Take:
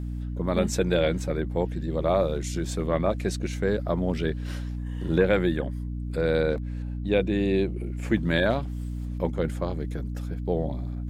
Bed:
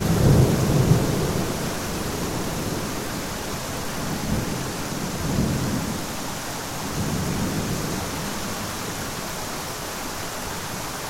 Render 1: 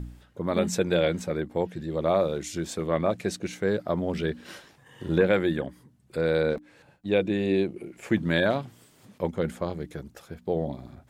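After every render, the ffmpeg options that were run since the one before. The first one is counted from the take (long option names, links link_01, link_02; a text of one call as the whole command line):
ffmpeg -i in.wav -af "bandreject=frequency=60:width_type=h:width=4,bandreject=frequency=120:width_type=h:width=4,bandreject=frequency=180:width_type=h:width=4,bandreject=frequency=240:width_type=h:width=4,bandreject=frequency=300:width_type=h:width=4" out.wav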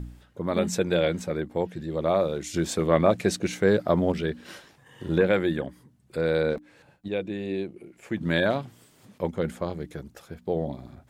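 ffmpeg -i in.wav -filter_complex "[0:a]asplit=5[link_01][link_02][link_03][link_04][link_05];[link_01]atrim=end=2.542[link_06];[link_02]atrim=start=2.538:end=4.122,asetpts=PTS-STARTPTS,volume=5dB[link_07];[link_03]atrim=start=4.118:end=7.082[link_08];[link_04]atrim=start=7.078:end=8.212,asetpts=PTS-STARTPTS,volume=-6dB[link_09];[link_05]atrim=start=8.208[link_10];[link_06][link_07]acrossfade=duration=0.004:curve1=hsin:curve2=hsin[link_11];[link_11][link_08]acrossfade=duration=0.004:curve1=hsin:curve2=hsin[link_12];[link_12][link_09]acrossfade=duration=0.004:curve1=hsin:curve2=hsin[link_13];[link_13][link_10]acrossfade=duration=0.004:curve1=hsin:curve2=hsin" out.wav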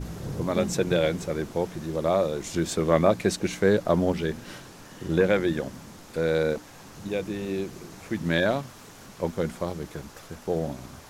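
ffmpeg -i in.wav -i bed.wav -filter_complex "[1:a]volume=-18dB[link_01];[0:a][link_01]amix=inputs=2:normalize=0" out.wav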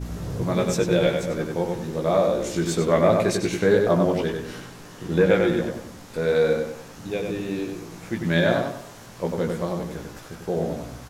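ffmpeg -i in.wav -filter_complex "[0:a]asplit=2[link_01][link_02];[link_02]adelay=17,volume=-4.5dB[link_03];[link_01][link_03]amix=inputs=2:normalize=0,asplit=2[link_04][link_05];[link_05]adelay=96,lowpass=frequency=3800:poles=1,volume=-3.5dB,asplit=2[link_06][link_07];[link_07]adelay=96,lowpass=frequency=3800:poles=1,volume=0.39,asplit=2[link_08][link_09];[link_09]adelay=96,lowpass=frequency=3800:poles=1,volume=0.39,asplit=2[link_10][link_11];[link_11]adelay=96,lowpass=frequency=3800:poles=1,volume=0.39,asplit=2[link_12][link_13];[link_13]adelay=96,lowpass=frequency=3800:poles=1,volume=0.39[link_14];[link_04][link_06][link_08][link_10][link_12][link_14]amix=inputs=6:normalize=0" out.wav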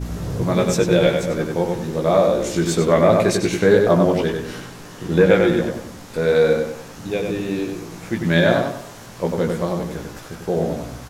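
ffmpeg -i in.wav -af "volume=4.5dB,alimiter=limit=-2dB:level=0:latency=1" out.wav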